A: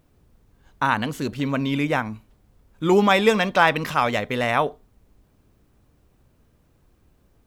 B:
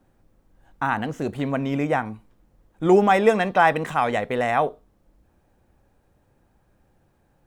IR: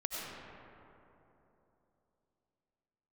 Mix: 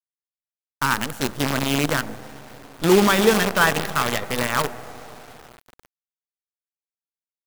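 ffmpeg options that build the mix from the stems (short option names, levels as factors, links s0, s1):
-filter_complex "[0:a]highshelf=f=6500:g=10,adynamicequalizer=threshold=0.0282:dfrequency=2100:dqfactor=0.7:tfrequency=2100:tqfactor=0.7:attack=5:release=100:ratio=0.375:range=2:mode=cutabove:tftype=highshelf,volume=0.708,asplit=2[s0][s1];[s1]volume=0.0708[s2];[1:a]adelay=1,volume=0.473,asplit=2[s3][s4];[s4]volume=0.447[s5];[2:a]atrim=start_sample=2205[s6];[s2][s5]amix=inputs=2:normalize=0[s7];[s7][s6]afir=irnorm=-1:irlink=0[s8];[s0][s3][s8]amix=inputs=3:normalize=0,equalizer=f=310:w=7.9:g=-4,acrusher=bits=4:dc=4:mix=0:aa=0.000001"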